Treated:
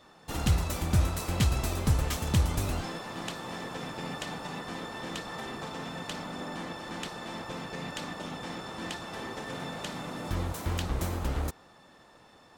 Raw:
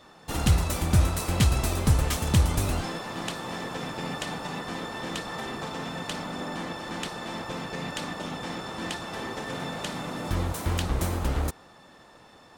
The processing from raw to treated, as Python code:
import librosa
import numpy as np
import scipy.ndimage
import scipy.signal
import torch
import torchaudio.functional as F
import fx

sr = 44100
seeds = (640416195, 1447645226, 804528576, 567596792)

y = fx.dynamic_eq(x, sr, hz=9300.0, q=6.5, threshold_db=-55.0, ratio=4.0, max_db=-6)
y = y * librosa.db_to_amplitude(-4.0)